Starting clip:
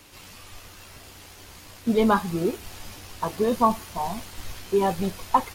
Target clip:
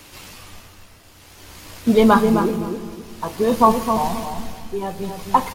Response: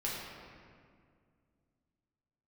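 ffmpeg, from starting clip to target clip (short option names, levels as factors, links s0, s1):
-filter_complex "[0:a]tremolo=f=0.52:d=0.73,asplit=2[s0][s1];[s1]adelay=263,lowpass=f=1100:p=1,volume=0.531,asplit=2[s2][s3];[s3]adelay=263,lowpass=f=1100:p=1,volume=0.29,asplit=2[s4][s5];[s5]adelay=263,lowpass=f=1100:p=1,volume=0.29,asplit=2[s6][s7];[s7]adelay=263,lowpass=f=1100:p=1,volume=0.29[s8];[s0][s2][s4][s6][s8]amix=inputs=5:normalize=0,asplit=2[s9][s10];[1:a]atrim=start_sample=2205[s11];[s10][s11]afir=irnorm=-1:irlink=0,volume=0.15[s12];[s9][s12]amix=inputs=2:normalize=0,volume=2"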